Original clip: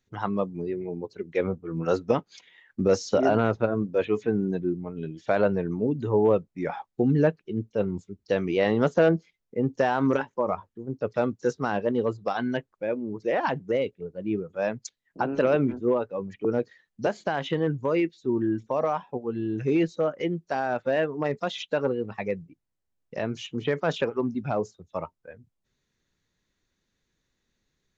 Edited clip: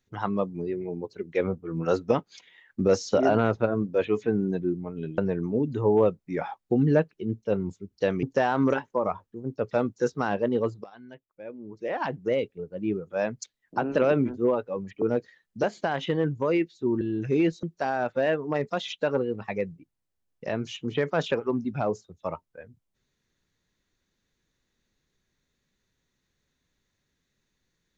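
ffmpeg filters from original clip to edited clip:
ffmpeg -i in.wav -filter_complex "[0:a]asplit=6[link_01][link_02][link_03][link_04][link_05][link_06];[link_01]atrim=end=5.182[link_07];[link_02]atrim=start=5.458:end=8.512[link_08];[link_03]atrim=start=9.658:end=12.27,asetpts=PTS-STARTPTS,afade=type=out:start_time=2.608:duration=0.004:curve=hsin:silence=0.0944061[link_09];[link_04]atrim=start=12.27:end=18.442,asetpts=PTS-STARTPTS,afade=type=in:duration=1.49:curve=qua:silence=0.0944061[link_10];[link_05]atrim=start=19.368:end=19.992[link_11];[link_06]atrim=start=20.328[link_12];[link_07][link_08]acrossfade=duration=0.004:curve1=hsin:curve2=hsin[link_13];[link_09][link_10]concat=n=2:v=0:a=1[link_14];[link_13][link_14]acrossfade=duration=0.004:curve1=hsin:curve2=hsin[link_15];[link_15][link_11]acrossfade=duration=0.004:curve1=hsin:curve2=hsin[link_16];[link_16][link_12]acrossfade=duration=0.004:curve1=hsin:curve2=hsin" out.wav

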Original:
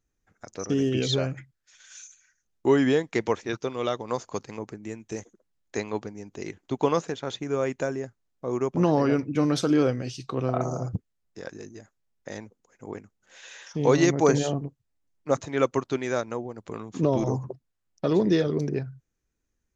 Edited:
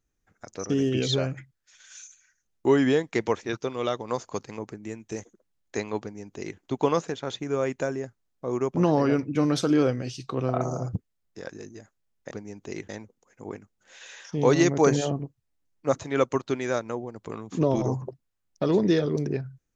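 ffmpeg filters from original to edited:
ffmpeg -i in.wav -filter_complex "[0:a]asplit=3[link_01][link_02][link_03];[link_01]atrim=end=12.312[link_04];[link_02]atrim=start=6.008:end=6.592[link_05];[link_03]atrim=start=12.308[link_06];[link_04][link_05]acrossfade=duration=0.004:curve1=hsin:curve2=hsin[link_07];[link_07][link_06]acrossfade=duration=0.004:curve1=hsin:curve2=hsin" out.wav

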